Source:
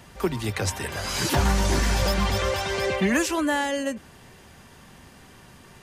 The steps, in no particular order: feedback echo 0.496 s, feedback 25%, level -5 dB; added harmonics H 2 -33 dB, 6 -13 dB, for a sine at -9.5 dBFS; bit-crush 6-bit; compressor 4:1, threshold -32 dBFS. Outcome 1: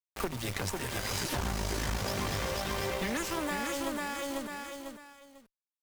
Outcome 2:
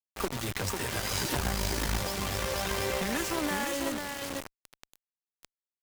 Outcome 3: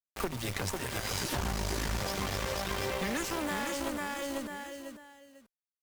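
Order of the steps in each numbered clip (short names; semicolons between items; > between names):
bit-crush > added harmonics > feedback echo > compressor; compressor > feedback echo > bit-crush > added harmonics; bit-crush > feedback echo > added harmonics > compressor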